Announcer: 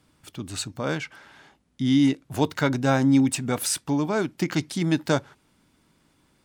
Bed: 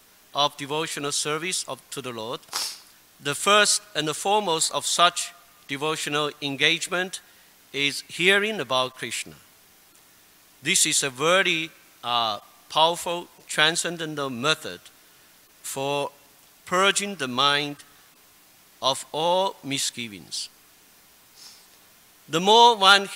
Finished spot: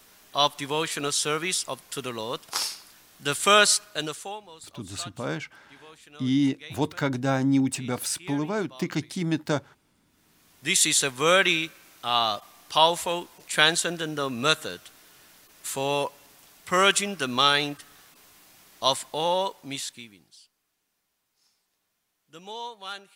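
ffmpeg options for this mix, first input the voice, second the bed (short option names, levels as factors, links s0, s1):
-filter_complex "[0:a]adelay=4400,volume=0.668[s0];[1:a]volume=15,afade=t=out:st=3.72:d=0.69:silence=0.0668344,afade=t=in:st=10.06:d=0.86:silence=0.0668344,afade=t=out:st=18.89:d=1.47:silence=0.0749894[s1];[s0][s1]amix=inputs=2:normalize=0"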